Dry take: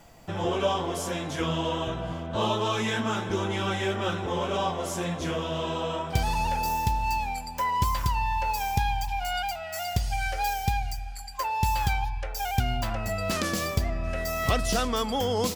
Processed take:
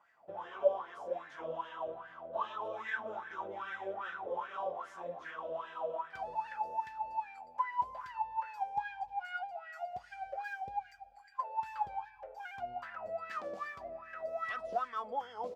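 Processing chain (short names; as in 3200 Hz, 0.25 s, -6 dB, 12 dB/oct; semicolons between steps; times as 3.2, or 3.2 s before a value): wah 2.5 Hz 530–1800 Hz, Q 8.1; gain +1 dB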